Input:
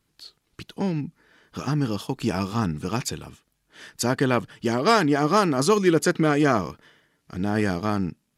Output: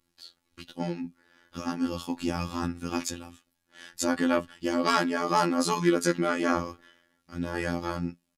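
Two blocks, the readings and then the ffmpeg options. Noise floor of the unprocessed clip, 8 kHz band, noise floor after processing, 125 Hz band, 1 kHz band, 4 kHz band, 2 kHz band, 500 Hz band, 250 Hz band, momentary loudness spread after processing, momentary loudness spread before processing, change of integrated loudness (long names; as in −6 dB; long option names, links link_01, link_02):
−73 dBFS, −3.0 dB, −77 dBFS, −9.5 dB, −4.0 dB, −4.0 dB, −4.0 dB, −6.5 dB, −4.5 dB, 14 LU, 13 LU, −5.0 dB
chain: -af "aecho=1:1:3.6:0.81,flanger=delay=5.9:depth=5:regen=74:speed=0.25:shape=triangular,afftfilt=real='hypot(re,im)*cos(PI*b)':imag='0':win_size=2048:overlap=0.75,volume=2dB"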